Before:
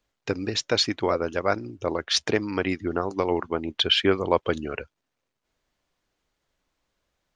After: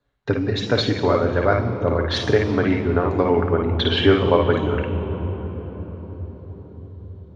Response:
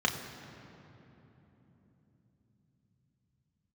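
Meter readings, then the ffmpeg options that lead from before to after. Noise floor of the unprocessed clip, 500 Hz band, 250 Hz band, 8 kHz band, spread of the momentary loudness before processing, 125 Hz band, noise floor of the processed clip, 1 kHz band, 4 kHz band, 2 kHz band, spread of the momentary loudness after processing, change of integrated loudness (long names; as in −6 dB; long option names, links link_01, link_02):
−81 dBFS, +7.0 dB, +7.5 dB, can't be measured, 9 LU, +14.5 dB, −42 dBFS, +5.0 dB, −1.0 dB, +4.0 dB, 18 LU, +5.0 dB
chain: -filter_complex "[0:a]lowshelf=frequency=260:gain=8[link_01];[1:a]atrim=start_sample=2205,asetrate=24696,aresample=44100[link_02];[link_01][link_02]afir=irnorm=-1:irlink=0,volume=-10.5dB"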